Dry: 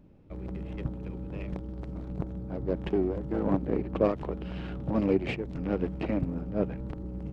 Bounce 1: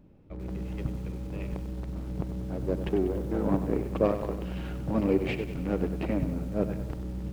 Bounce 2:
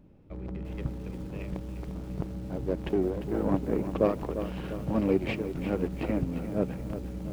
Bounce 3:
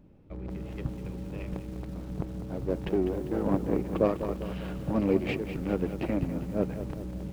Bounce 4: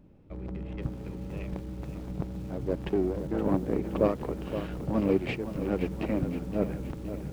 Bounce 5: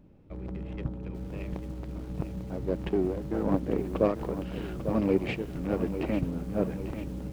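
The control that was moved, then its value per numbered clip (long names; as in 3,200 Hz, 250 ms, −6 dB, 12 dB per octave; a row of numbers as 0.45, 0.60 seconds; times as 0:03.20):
feedback echo at a low word length, delay time: 96, 349, 199, 520, 846 milliseconds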